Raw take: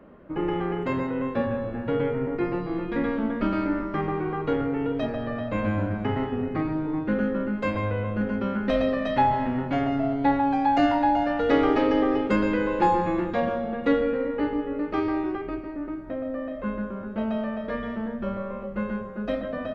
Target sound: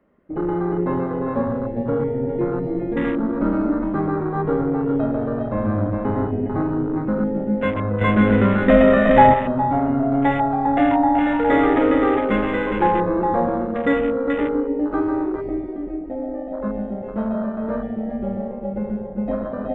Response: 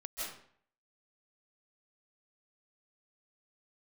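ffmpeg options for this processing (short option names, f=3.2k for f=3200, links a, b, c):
-filter_complex "[0:a]asplit=2[a][b];[b]aecho=0:1:51|411:0.158|0.562[c];[a][c]amix=inputs=2:normalize=0,asoftclip=type=tanh:threshold=-9dB,equalizer=f=2k:t=o:w=0.22:g=7.5,asplit=2[d][e];[e]adelay=108,lowpass=f=3.9k:p=1,volume=-17dB,asplit=2[f][g];[g]adelay=108,lowpass=f=3.9k:p=1,volume=0.2[h];[d][f][h]amix=inputs=3:normalize=0,asettb=1/sr,asplit=3[i][j][k];[i]atrim=end=8.014[l];[j]atrim=start=8.01:end=9.34,asetpts=PTS-STARTPTS,afade=t=in:d=0.004:c=qsin,afade=t=out:st=1.326:d=0.004:c=qsin,acontrast=80[m];[k]atrim=start=9.336[n];[l][m]acrossfade=d=0.004:c1=hsin:c2=qsin[o];[o][n]acrossfade=d=0.004:c1=qsin:c2=hsin,asplit=2[p][q];[1:a]atrim=start_sample=2205,afade=t=out:st=0.41:d=0.01,atrim=end_sample=18522[r];[q][r]afir=irnorm=-1:irlink=0,volume=-12.5dB[s];[p][s]amix=inputs=2:normalize=0,acrossover=split=2900[t][u];[u]acompressor=threshold=-52dB:ratio=4:attack=1:release=60[v];[t][v]amix=inputs=2:normalize=0,asettb=1/sr,asplit=3[w][x][y];[w]atrim=end=16.744[z];[x]atrim=start=16.74:end=17.29,asetpts=PTS-STARTPTS,afade=t=in:d=0.004:c=qsin,afade=t=out:st=0.546:d=0.004:c=qsin,highshelf=f=3.7k:g=11[aa];[y]atrim=start=17.286[ab];[z][aa]acrossfade=d=0.004:c1=hsin:c2=qsin[ac];[ac][ab]acrossfade=d=0.004:c1=qsin:c2=hsin,afwtdn=0.0398,volume=2.5dB"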